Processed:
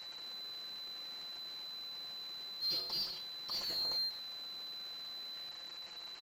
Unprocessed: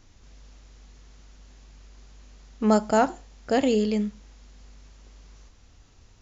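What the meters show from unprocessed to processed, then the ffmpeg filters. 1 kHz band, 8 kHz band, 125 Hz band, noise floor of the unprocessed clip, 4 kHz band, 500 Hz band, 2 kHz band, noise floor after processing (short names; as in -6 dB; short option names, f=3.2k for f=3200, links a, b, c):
-24.5 dB, n/a, -26.0 dB, -55 dBFS, +8.0 dB, -30.5 dB, -15.5 dB, -49 dBFS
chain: -filter_complex "[0:a]afftfilt=real='real(if(lt(b,736),b+184*(1-2*mod(floor(b/184),2)),b),0)':imag='imag(if(lt(b,736),b+184*(1-2*mod(floor(b/184),2)),b),0)':win_size=2048:overlap=0.75,bandreject=f=61.79:t=h:w=4,bandreject=f=123.58:t=h:w=4,bandreject=f=185.37:t=h:w=4,bandreject=f=247.16:t=h:w=4,bandreject=f=308.95:t=h:w=4,bandreject=f=370.74:t=h:w=4,bandreject=f=432.53:t=h:w=4,bandreject=f=494.32:t=h:w=4,bandreject=f=556.11:t=h:w=4,bandreject=f=617.9:t=h:w=4,bandreject=f=679.69:t=h:w=4,bandreject=f=741.48:t=h:w=4,bandreject=f=803.27:t=h:w=4,bandreject=f=865.06:t=h:w=4,bandreject=f=926.85:t=h:w=4,bandreject=f=988.64:t=h:w=4,bandreject=f=1.05043k:t=h:w=4,bandreject=f=1.11222k:t=h:w=4,bandreject=f=1.17401k:t=h:w=4,bandreject=f=1.2358k:t=h:w=4,bandreject=f=1.29759k:t=h:w=4,bandreject=f=1.35938k:t=h:w=4,bandreject=f=1.42117k:t=h:w=4,bandreject=f=1.48296k:t=h:w=4,bandreject=f=1.54475k:t=h:w=4,bandreject=f=1.60654k:t=h:w=4,bandreject=f=1.66833k:t=h:w=4,bandreject=f=1.73012k:t=h:w=4,bandreject=f=1.79191k:t=h:w=4,bandreject=f=1.8537k:t=h:w=4,bandreject=f=1.91549k:t=h:w=4,bandreject=f=1.97728k:t=h:w=4,bandreject=f=2.03907k:t=h:w=4,asoftclip=type=tanh:threshold=-24dB,aecho=1:1:5.8:0.7,asplit=2[a][b];[b]highpass=f=720:p=1,volume=19dB,asoftclip=type=tanh:threshold=-33dB[c];[a][c]amix=inputs=2:normalize=0,lowpass=f=1k:p=1,volume=-6dB,volume=4.5dB"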